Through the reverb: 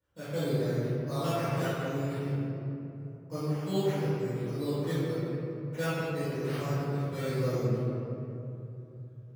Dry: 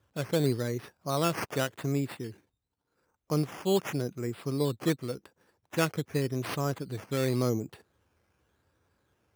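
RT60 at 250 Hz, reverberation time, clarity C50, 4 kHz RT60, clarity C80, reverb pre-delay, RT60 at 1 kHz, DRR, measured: 3.7 s, 3.0 s, -5.5 dB, 1.4 s, -2.5 dB, 4 ms, 2.7 s, -15.5 dB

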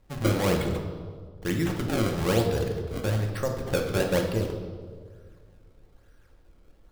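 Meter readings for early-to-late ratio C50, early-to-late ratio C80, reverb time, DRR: 5.0 dB, 7.0 dB, 1.8 s, 2.0 dB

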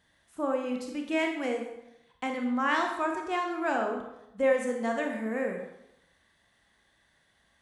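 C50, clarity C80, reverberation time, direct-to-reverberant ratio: 4.5 dB, 7.5 dB, 0.85 s, 2.0 dB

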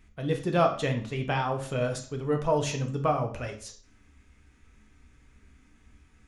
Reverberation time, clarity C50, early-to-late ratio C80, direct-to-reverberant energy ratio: 0.50 s, 10.0 dB, 14.5 dB, 3.5 dB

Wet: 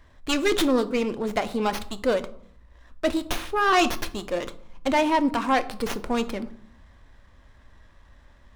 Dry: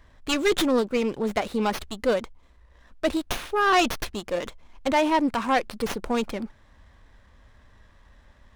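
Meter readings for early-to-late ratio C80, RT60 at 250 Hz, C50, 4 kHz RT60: 20.5 dB, 1.0 s, 16.5 dB, 0.35 s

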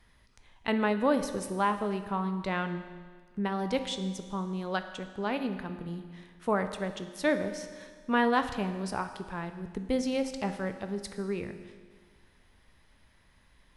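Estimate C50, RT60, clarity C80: 10.0 dB, 1.6 s, 11.0 dB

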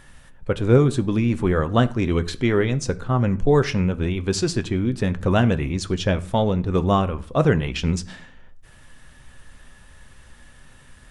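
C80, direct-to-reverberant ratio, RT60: 23.0 dB, 10.0 dB, 0.50 s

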